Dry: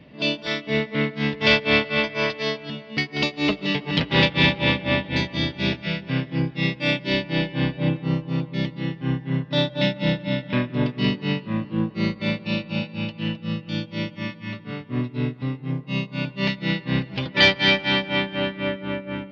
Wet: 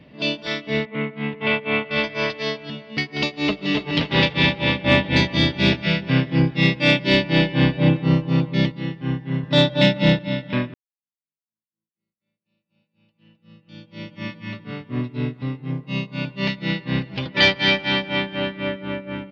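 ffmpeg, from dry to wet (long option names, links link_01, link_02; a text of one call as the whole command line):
ffmpeg -i in.wav -filter_complex "[0:a]asettb=1/sr,asplit=3[link_01][link_02][link_03];[link_01]atrim=end=0.854[link_04];[link_02]atrim=start=0.85:end=1.91,asetpts=PTS-STARTPTS,afade=type=in:duration=0.004:curve=qsin,afade=type=out:start_time=1.056:duration=0.004:curve=qsin,highpass=150,equalizer=frequency=300:width_type=q:width=4:gain=-5,equalizer=frequency=560:width_type=q:width=4:gain=-6,equalizer=frequency=1700:width_type=q:width=4:gain=-8,lowpass=frequency=2700:width=0.5412,lowpass=frequency=2700:width=1.3066[link_05];[link_03]atrim=start=1.906[link_06];[link_04][link_05]acrossfade=duration=0.004:curve1=hsin:curve2=qsin[link_07];[link_07][link_06]acrossfade=duration=0.004:curve1=qsin:curve2=hsin,asplit=2[link_08][link_09];[link_09]afade=type=in:start_time=3.37:duration=0.01,afade=type=out:start_time=3.92:duration=0.01,aecho=0:1:280|560|840:0.530884|0.132721|0.0331803[link_10];[link_08][link_10]amix=inputs=2:normalize=0,asettb=1/sr,asplit=3[link_11][link_12][link_13];[link_11]atrim=end=4.844[link_14];[link_12]atrim=start=4.84:end=8.72,asetpts=PTS-STARTPTS,afade=type=in:duration=0.004:curve=qsin,afade=type=out:start_time=3.876:duration=0.004:curve=qsin,acontrast=56[link_15];[link_13]atrim=start=8.716[link_16];[link_14][link_15]acrossfade=duration=0.004:curve1=hsin:curve2=qsin[link_17];[link_17][link_16]acrossfade=duration=0.004:curve1=qsin:curve2=hsin,asettb=1/sr,asplit=3[link_18][link_19][link_20];[link_18]atrim=end=9.434[link_21];[link_19]atrim=start=9.43:end=10.19,asetpts=PTS-STARTPTS,afade=type=in:duration=0.004:curve=qsin,afade=type=out:start_time=0.756:duration=0.004:curve=qsin,acontrast=59[link_22];[link_20]atrim=start=10.186[link_23];[link_21][link_22]acrossfade=duration=0.004:curve1=hsin:curve2=qsin[link_24];[link_24][link_23]acrossfade=duration=0.004:curve1=qsin:curve2=hsin,asplit=2[link_25][link_26];[link_25]atrim=end=10.74,asetpts=PTS-STARTPTS,afade=type=out:start_time=10.736:duration=0.004:curve=hsin[link_27];[link_26]atrim=start=10.74,asetpts=PTS-STARTPTS,afade=type=in:duration=3.54:curve=exp[link_28];[link_27][link_28]concat=n=2:v=0:a=1" out.wav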